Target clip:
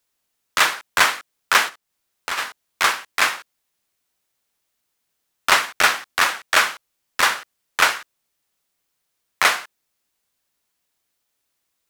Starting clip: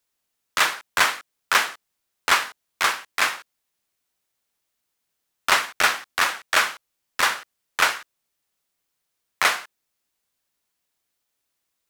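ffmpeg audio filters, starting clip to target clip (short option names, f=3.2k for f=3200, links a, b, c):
-filter_complex "[0:a]asplit=3[a][b][c];[a]afade=t=out:st=1.68:d=0.02[d];[b]acompressor=threshold=-36dB:ratio=2,afade=t=in:st=1.68:d=0.02,afade=t=out:st=2.37:d=0.02[e];[c]afade=t=in:st=2.37:d=0.02[f];[d][e][f]amix=inputs=3:normalize=0,volume=3dB"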